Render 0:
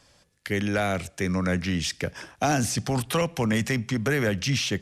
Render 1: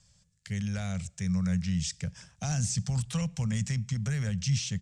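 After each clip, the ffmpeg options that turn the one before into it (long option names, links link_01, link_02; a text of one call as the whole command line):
ffmpeg -i in.wav -af "firequalizer=gain_entry='entry(180,0);entry(300,-28);entry(490,-18);entry(7600,1);entry(12000,-25)':delay=0.05:min_phase=1" out.wav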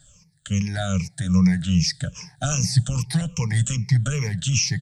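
ffmpeg -i in.wav -af "afftfilt=real='re*pow(10,21/40*sin(2*PI*(0.81*log(max(b,1)*sr/1024/100)/log(2)-(-2.5)*(pts-256)/sr)))':imag='im*pow(10,21/40*sin(2*PI*(0.81*log(max(b,1)*sr/1024/100)/log(2)-(-2.5)*(pts-256)/sr)))':win_size=1024:overlap=0.75,aecho=1:1:6.7:0.39,volume=5dB" out.wav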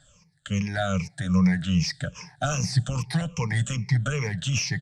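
ffmpeg -i in.wav -filter_complex "[0:a]asplit=2[link_01][link_02];[link_02]highpass=frequency=720:poles=1,volume=11dB,asoftclip=type=tanh:threshold=-7.5dB[link_03];[link_01][link_03]amix=inputs=2:normalize=0,lowpass=frequency=1400:poles=1,volume=-6dB,aresample=32000,aresample=44100" out.wav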